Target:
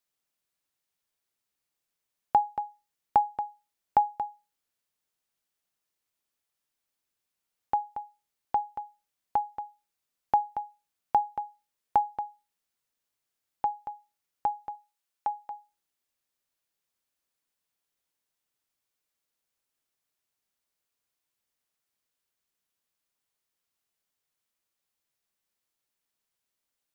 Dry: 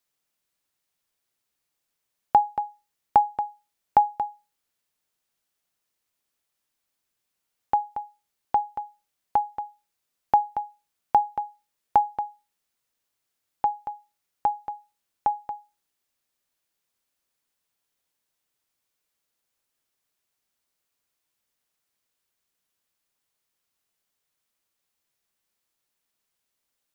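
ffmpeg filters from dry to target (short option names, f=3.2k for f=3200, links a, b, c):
-filter_complex "[0:a]asettb=1/sr,asplit=3[a][b][c];[a]atrim=end=14.754[d];[b]atrim=start=14.75:end=15.51,asetpts=PTS-STARTPTS,afade=t=in:d=0.004:c=qsin,afade=t=out:st=0.756:d=0.004:c=qsin,lowshelf=f=370:g=-12[e];[c]atrim=start=15.506[f];[d][e]acrossfade=d=0.004:c1=hsin:c2=qsin[g];[g][f]acrossfade=d=0.004:c1=qsin:c2=hsin,volume=-4.5dB"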